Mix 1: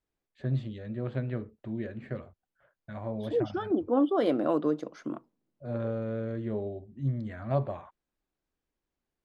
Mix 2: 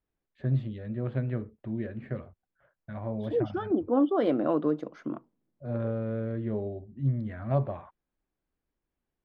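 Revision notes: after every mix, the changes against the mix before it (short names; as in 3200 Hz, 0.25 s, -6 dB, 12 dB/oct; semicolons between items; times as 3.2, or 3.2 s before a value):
master: add tone controls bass +3 dB, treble -11 dB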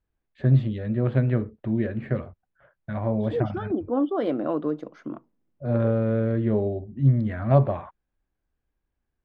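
first voice +8.5 dB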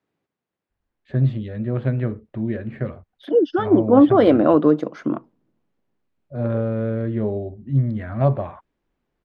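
first voice: entry +0.70 s; second voice +11.5 dB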